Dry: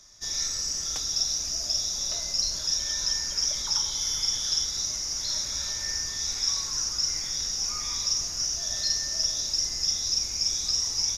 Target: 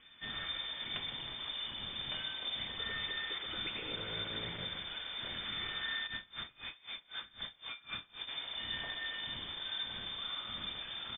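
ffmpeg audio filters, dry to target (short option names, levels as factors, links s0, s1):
-filter_complex "[0:a]asoftclip=type=tanh:threshold=0.0422,lowpass=f=3100:t=q:w=0.5098,lowpass=f=3100:t=q:w=0.6013,lowpass=f=3100:t=q:w=0.9,lowpass=f=3100:t=q:w=2.563,afreqshift=-3600,bandreject=f=2700:w=10,aecho=1:1:128:0.316,asplit=3[s0][s1][s2];[s0]afade=t=out:st=6.06:d=0.02[s3];[s1]aeval=exprs='val(0)*pow(10,-25*(0.5-0.5*cos(2*PI*3.9*n/s))/20)':c=same,afade=t=in:st=6.06:d=0.02,afade=t=out:st=8.27:d=0.02[s4];[s2]afade=t=in:st=8.27:d=0.02[s5];[s3][s4][s5]amix=inputs=3:normalize=0,volume=1.78"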